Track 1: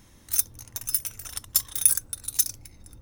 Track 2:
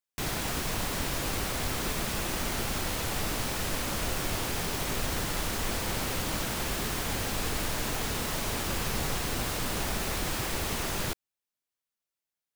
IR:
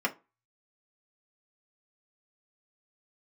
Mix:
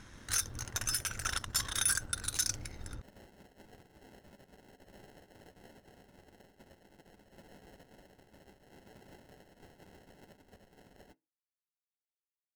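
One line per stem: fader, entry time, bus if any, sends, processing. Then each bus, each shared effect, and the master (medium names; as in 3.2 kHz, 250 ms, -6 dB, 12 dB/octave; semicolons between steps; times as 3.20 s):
+2.0 dB, 0.00 s, no send, low-pass 6.9 kHz 12 dB/octave; peaking EQ 1.5 kHz +11 dB 0.46 oct; waveshaping leveller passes 1
-17.0 dB, 0.00 s, send -19.5 dB, spectral gate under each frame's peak -25 dB weak; sample-and-hold 37×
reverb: on, RT60 0.30 s, pre-delay 3 ms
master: peak limiter -19 dBFS, peak gain reduction 10.5 dB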